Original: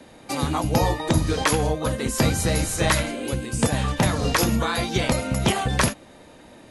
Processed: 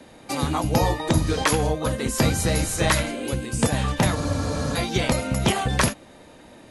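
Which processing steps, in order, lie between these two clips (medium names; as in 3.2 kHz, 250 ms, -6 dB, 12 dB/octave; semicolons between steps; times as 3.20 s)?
spectral freeze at 4.18 s, 0.58 s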